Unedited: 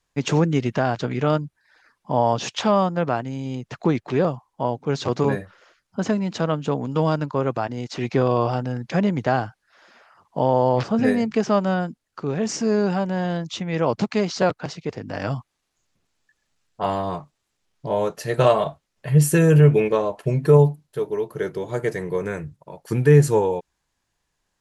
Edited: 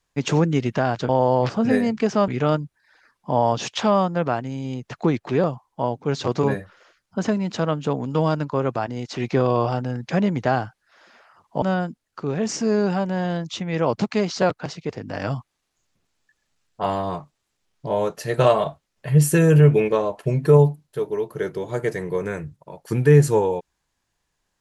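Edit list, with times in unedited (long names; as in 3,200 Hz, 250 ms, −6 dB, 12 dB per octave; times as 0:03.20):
0:10.43–0:11.62: move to 0:01.09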